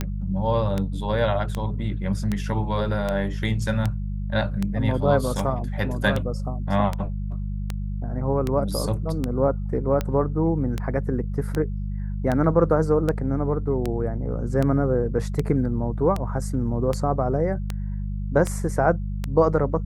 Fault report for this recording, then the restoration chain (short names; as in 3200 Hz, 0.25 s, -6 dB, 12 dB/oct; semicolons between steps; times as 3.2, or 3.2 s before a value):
hum 50 Hz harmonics 4 -28 dBFS
tick 78 rpm -12 dBFS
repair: de-click; de-hum 50 Hz, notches 4